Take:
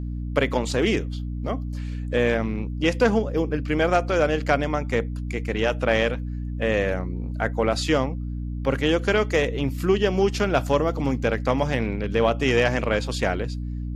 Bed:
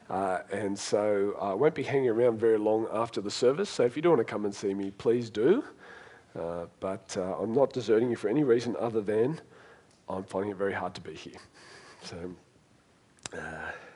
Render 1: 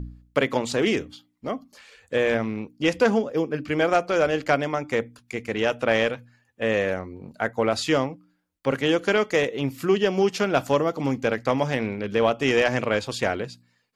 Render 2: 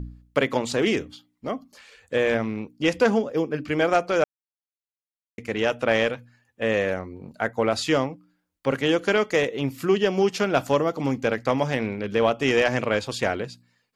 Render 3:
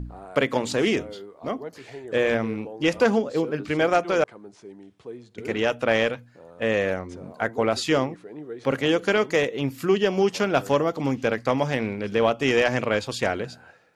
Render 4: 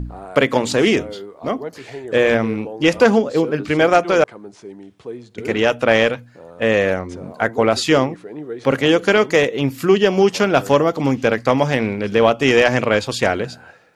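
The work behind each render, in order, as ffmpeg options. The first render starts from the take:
-af "bandreject=f=60:t=h:w=4,bandreject=f=120:t=h:w=4,bandreject=f=180:t=h:w=4,bandreject=f=240:t=h:w=4,bandreject=f=300:t=h:w=4"
-filter_complex "[0:a]asplit=3[a][b][c];[a]atrim=end=4.24,asetpts=PTS-STARTPTS,afade=t=out:st=4.236:d=0.004:c=hsin[d];[b]atrim=start=4.24:end=5.38,asetpts=PTS-STARTPTS,volume=0[e];[c]atrim=start=5.38,asetpts=PTS-STARTPTS,afade=t=in:d=0.004:c=hsin[f];[d][e][f]concat=n=3:v=0:a=1"
-filter_complex "[1:a]volume=-12.5dB[a];[0:a][a]amix=inputs=2:normalize=0"
-af "volume=7dB,alimiter=limit=-1dB:level=0:latency=1"

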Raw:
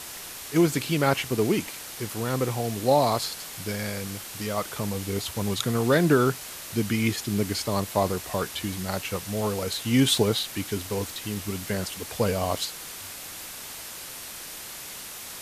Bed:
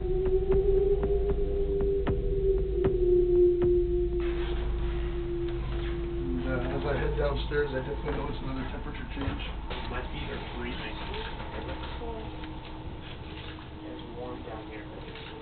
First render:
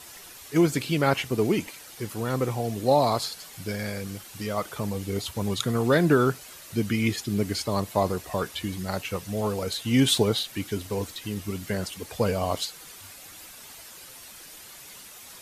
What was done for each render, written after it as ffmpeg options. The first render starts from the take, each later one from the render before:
-af "afftdn=nr=9:nf=-40"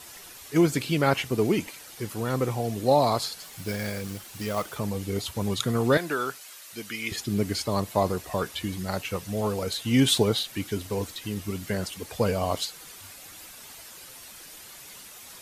-filter_complex "[0:a]asettb=1/sr,asplit=3[a][b][c];[a]atrim=end=3.424[d];[b]atrim=start=3.42:end=4.77,asetpts=PTS-STARTPTS,afade=t=in:d=0.004:c=qsin,afade=t=out:st=1.346:d=0.004:c=qsin,acrusher=bits=3:mode=log:mix=0:aa=0.000001[e];[c]atrim=start=4.766[f];[d][e]acrossfade=d=0.004:c1=hsin:c2=qsin[g];[g][f]acrossfade=d=0.004:c1=qsin:c2=hsin,asettb=1/sr,asplit=3[h][i][j];[h]atrim=end=5.974[k];[i]atrim=start=5.97:end=7.12,asetpts=PTS-STARTPTS,afade=t=in:d=0.004:c=qsin,afade=t=out:st=1.146:d=0.004:c=qsin,highpass=f=1.2k:p=1[l];[j]atrim=start=7.116[m];[k][l]acrossfade=d=0.004:c1=hsin:c2=qsin[n];[n][m]acrossfade=d=0.004:c1=qsin:c2=hsin"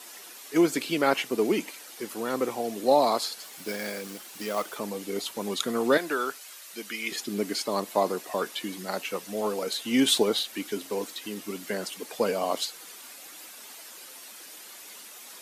-af "highpass=f=230:w=0.5412,highpass=f=230:w=1.3066"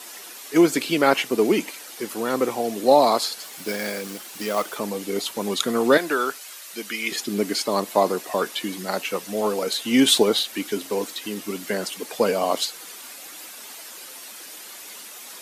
-af "volume=5.5dB"

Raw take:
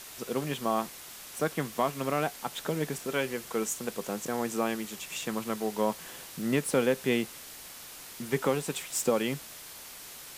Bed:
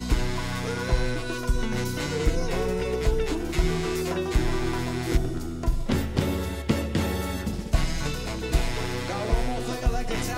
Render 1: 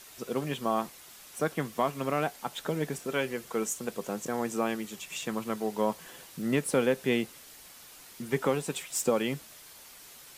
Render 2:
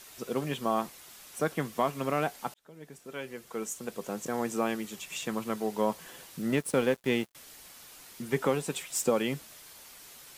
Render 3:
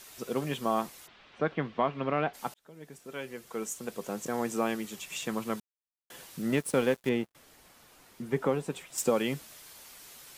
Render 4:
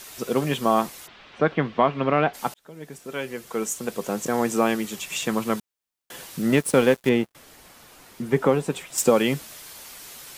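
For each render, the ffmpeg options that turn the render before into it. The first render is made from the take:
-af "afftdn=nr=6:nf=-46"
-filter_complex "[0:a]asettb=1/sr,asplit=3[a][b][c];[a]atrim=end=6.504[d];[b]atrim=start=6.5:end=7.35,asetpts=PTS-STARTPTS,afade=t=in:d=0.004:c=qsin,afade=t=out:st=0.846:d=0.004:c=qsin,aeval=exprs='sgn(val(0))*max(abs(val(0))-0.0075,0)':c=same[e];[c]atrim=start=7.346[f];[d][e]acrossfade=d=0.004:c1=hsin:c2=qsin[g];[g][f]acrossfade=d=0.004:c1=qsin:c2=hsin,asplit=2[h][i];[h]atrim=end=2.54,asetpts=PTS-STARTPTS,afade=t=out:st=2.536:d=0.004:c=hsin[j];[i]atrim=start=2.54,asetpts=PTS-STARTPTS,afade=t=in:d=1.86[k];[j][k]concat=n=2:v=0:a=1"
-filter_complex "[0:a]asplit=3[a][b][c];[a]afade=t=out:st=1.06:d=0.02[d];[b]lowpass=f=3.5k:w=0.5412,lowpass=f=3.5k:w=1.3066,afade=t=in:st=1.06:d=0.02,afade=t=out:st=2.33:d=0.02[e];[c]afade=t=in:st=2.33:d=0.02[f];[d][e][f]amix=inputs=3:normalize=0,asettb=1/sr,asplit=3[g][h][i];[g]atrim=end=7.094[j];[h]atrim=start=7.09:end=8.98,asetpts=PTS-STARTPTS,afade=t=in:d=0.004:c=qsin,afade=t=out:st=1.886:d=0.004:c=qsin,highshelf=f=2.2k:g=-10.5[k];[i]atrim=start=8.976[l];[j][k]acrossfade=d=0.004:c1=hsin:c2=qsin[m];[m][l]acrossfade=d=0.004:c1=qsin:c2=hsin,asplit=3[n][o][p];[n]atrim=end=5.6,asetpts=PTS-STARTPTS,afade=t=out:st=5.596:d=0.004:c=hsin[q];[o]atrim=start=5.6:end=6.1,asetpts=PTS-STARTPTS,volume=0[r];[p]atrim=start=6.1,asetpts=PTS-STARTPTS,afade=t=in:d=0.004:c=hsin[s];[q][r][s]concat=n=3:v=0:a=1"
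-af "volume=8.5dB"

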